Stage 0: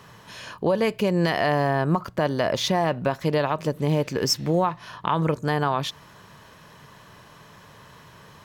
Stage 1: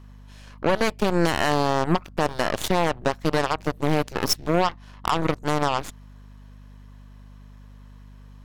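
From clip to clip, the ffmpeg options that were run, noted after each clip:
ffmpeg -i in.wav -af "aeval=exprs='0.335*(cos(1*acos(clip(val(0)/0.335,-1,1)))-cos(1*PI/2))+0.0376*(cos(4*acos(clip(val(0)/0.335,-1,1)))-cos(4*PI/2))+0.0168*(cos(6*acos(clip(val(0)/0.335,-1,1)))-cos(6*PI/2))+0.0596*(cos(7*acos(clip(val(0)/0.335,-1,1)))-cos(7*PI/2))+0.0335*(cos(8*acos(clip(val(0)/0.335,-1,1)))-cos(8*PI/2))':channel_layout=same,aeval=exprs='val(0)+0.00631*(sin(2*PI*50*n/s)+sin(2*PI*2*50*n/s)/2+sin(2*PI*3*50*n/s)/3+sin(2*PI*4*50*n/s)/4+sin(2*PI*5*50*n/s)/5)':channel_layout=same" out.wav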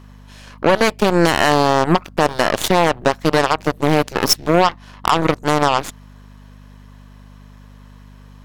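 ffmpeg -i in.wav -af "lowshelf=frequency=130:gain=-6.5,volume=8dB" out.wav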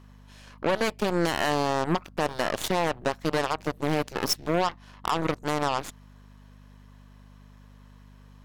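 ffmpeg -i in.wav -af "asoftclip=type=tanh:threshold=-5dB,volume=-9dB" out.wav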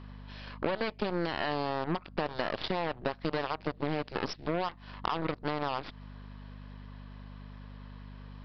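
ffmpeg -i in.wav -af "acompressor=threshold=-34dB:ratio=4,aresample=11025,aresample=44100,volume=4.5dB" out.wav

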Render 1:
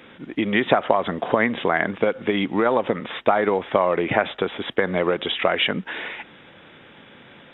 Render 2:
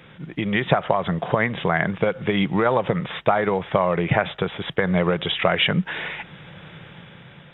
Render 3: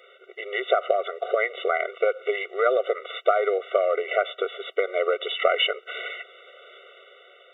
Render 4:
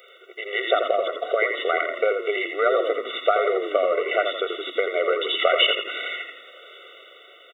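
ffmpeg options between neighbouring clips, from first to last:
ffmpeg -i in.wav -af "dynaudnorm=framelen=170:gausssize=11:maxgain=10dB,lowshelf=frequency=200:width_type=q:width=3:gain=6.5,volume=-1.5dB" out.wav
ffmpeg -i in.wav -af "afftfilt=real='re*eq(mod(floor(b*sr/1024/380),2),1)':imag='im*eq(mod(floor(b*sr/1024/380),2),1)':win_size=1024:overlap=0.75" out.wav
ffmpeg -i in.wav -filter_complex "[0:a]crystalizer=i=2.5:c=0,asplit=2[link_01][link_02];[link_02]asplit=5[link_03][link_04][link_05][link_06][link_07];[link_03]adelay=84,afreqshift=-35,volume=-6dB[link_08];[link_04]adelay=168,afreqshift=-70,volume=-13.5dB[link_09];[link_05]adelay=252,afreqshift=-105,volume=-21.1dB[link_10];[link_06]adelay=336,afreqshift=-140,volume=-28.6dB[link_11];[link_07]adelay=420,afreqshift=-175,volume=-36.1dB[link_12];[link_08][link_09][link_10][link_11][link_12]amix=inputs=5:normalize=0[link_13];[link_01][link_13]amix=inputs=2:normalize=0" out.wav

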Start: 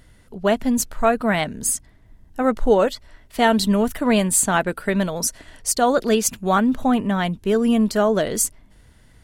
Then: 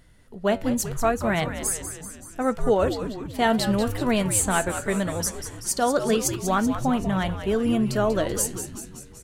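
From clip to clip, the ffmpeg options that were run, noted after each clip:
ffmpeg -i in.wav -filter_complex "[0:a]flanger=delay=5.8:depth=4.8:regen=82:speed=0.77:shape=sinusoidal,asplit=2[link_01][link_02];[link_02]asplit=7[link_03][link_04][link_05][link_06][link_07][link_08][link_09];[link_03]adelay=191,afreqshift=-100,volume=-9.5dB[link_10];[link_04]adelay=382,afreqshift=-200,volume=-13.9dB[link_11];[link_05]adelay=573,afreqshift=-300,volume=-18.4dB[link_12];[link_06]adelay=764,afreqshift=-400,volume=-22.8dB[link_13];[link_07]adelay=955,afreqshift=-500,volume=-27.2dB[link_14];[link_08]adelay=1146,afreqshift=-600,volume=-31.7dB[link_15];[link_09]adelay=1337,afreqshift=-700,volume=-36.1dB[link_16];[link_10][link_11][link_12][link_13][link_14][link_15][link_16]amix=inputs=7:normalize=0[link_17];[link_01][link_17]amix=inputs=2:normalize=0" out.wav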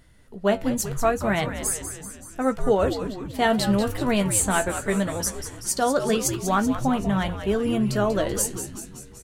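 ffmpeg -i in.wav -filter_complex "[0:a]asplit=2[link_01][link_02];[link_02]adelay=15,volume=-10.5dB[link_03];[link_01][link_03]amix=inputs=2:normalize=0" out.wav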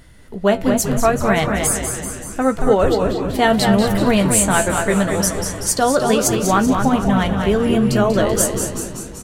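ffmpeg -i in.wav -filter_complex "[0:a]asplit=2[link_01][link_02];[link_02]acompressor=threshold=-30dB:ratio=6,volume=-1dB[link_03];[link_01][link_03]amix=inputs=2:normalize=0,asplit=2[link_04][link_05];[link_05]adelay=228,lowpass=frequency=4400:poles=1,volume=-5.5dB,asplit=2[link_06][link_07];[link_07]adelay=228,lowpass=frequency=4400:poles=1,volume=0.37,asplit=2[link_08][link_09];[link_09]adelay=228,lowpass=frequency=4400:poles=1,volume=0.37,asplit=2[link_10][link_11];[link_11]adelay=228,lowpass=frequency=4400:poles=1,volume=0.37[link_12];[link_04][link_06][link_08][link_10][link_12]amix=inputs=5:normalize=0,volume=4dB" out.wav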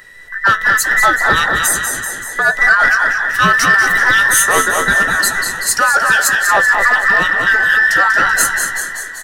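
ffmpeg -i in.wav -af "afftfilt=real='real(if(between(b,1,1012),(2*floor((b-1)/92)+1)*92-b,b),0)':imag='imag(if(between(b,1,1012),(2*floor((b-1)/92)+1)*92-b,b),0)*if(between(b,1,1012),-1,1)':win_size=2048:overlap=0.75,acontrast=39,volume=-1dB" out.wav

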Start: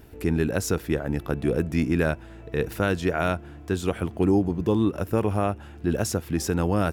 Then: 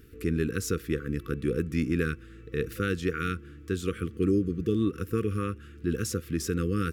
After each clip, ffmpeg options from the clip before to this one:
ffmpeg -i in.wav -af "afftfilt=real='re*(1-between(b*sr/4096,510,1100))':imag='im*(1-between(b*sr/4096,510,1100))':win_size=4096:overlap=0.75,volume=-4dB" out.wav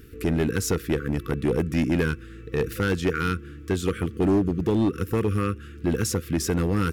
ffmpeg -i in.wav -af "asoftclip=type=hard:threshold=-23dB,volume=6dB" out.wav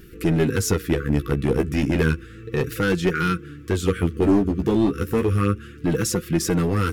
ffmpeg -i in.wav -af "flanger=delay=5.5:depth=9.5:regen=14:speed=0.32:shape=sinusoidal,volume=6.5dB" out.wav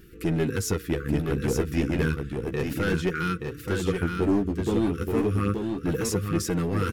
ffmpeg -i in.wav -af "aecho=1:1:876:0.562,volume=-5.5dB" out.wav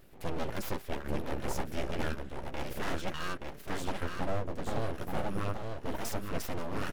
ffmpeg -i in.wav -af "aeval=exprs='abs(val(0))':channel_layout=same,volume=-6dB" out.wav

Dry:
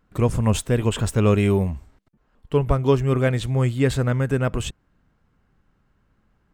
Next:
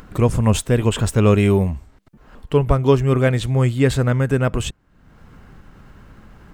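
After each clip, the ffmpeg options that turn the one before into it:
ffmpeg -i in.wav -af "acompressor=mode=upward:threshold=-31dB:ratio=2.5,volume=3.5dB" out.wav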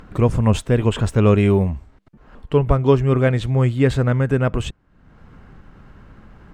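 ffmpeg -i in.wav -af "aemphasis=mode=reproduction:type=50kf" out.wav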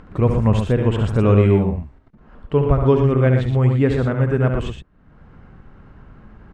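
ffmpeg -i in.wav -af "lowpass=frequency=2200:poles=1,aecho=1:1:69.97|116.6:0.447|0.447,volume=-1dB" out.wav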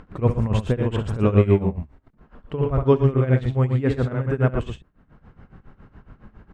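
ffmpeg -i in.wav -af "tremolo=f=7.2:d=0.85" out.wav

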